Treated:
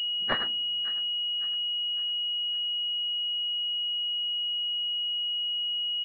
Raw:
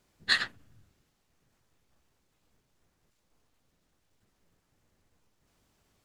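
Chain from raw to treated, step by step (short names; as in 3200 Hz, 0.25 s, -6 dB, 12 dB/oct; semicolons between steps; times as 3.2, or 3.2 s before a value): Chebyshev high-pass 230 Hz, order 2; on a send: feedback echo 0.558 s, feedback 45%, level -18 dB; on the sum: pulse-width modulation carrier 2900 Hz; gain +5 dB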